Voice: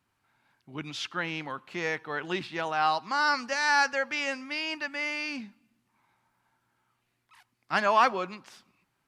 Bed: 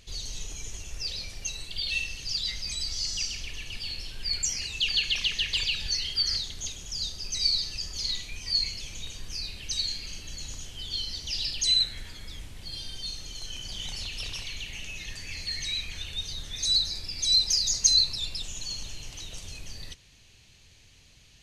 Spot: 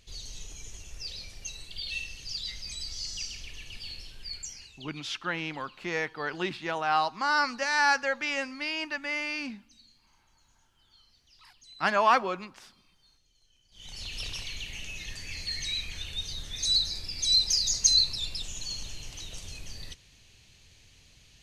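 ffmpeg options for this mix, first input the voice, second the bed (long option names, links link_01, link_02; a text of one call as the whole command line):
ffmpeg -i stem1.wav -i stem2.wav -filter_complex "[0:a]adelay=4100,volume=0dB[link_01];[1:a]volume=22.5dB,afade=type=out:start_time=3.92:duration=1:silence=0.0668344,afade=type=in:start_time=13.71:duration=0.45:silence=0.0398107[link_02];[link_01][link_02]amix=inputs=2:normalize=0" out.wav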